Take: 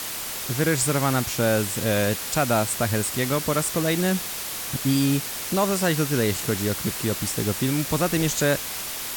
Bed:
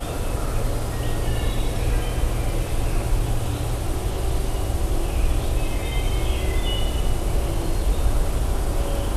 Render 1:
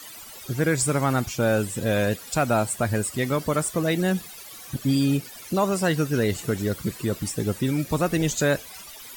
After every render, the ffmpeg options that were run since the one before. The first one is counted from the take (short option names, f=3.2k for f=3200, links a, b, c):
-af "afftdn=nr=16:nf=-32"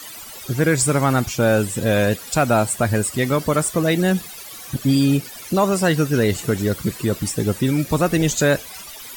-af "acontrast=31"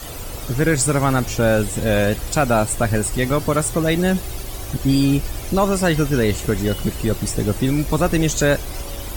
-filter_complex "[1:a]volume=-7dB[a];[0:a][a]amix=inputs=2:normalize=0"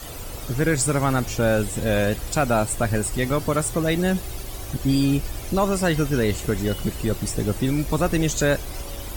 -af "volume=-3.5dB"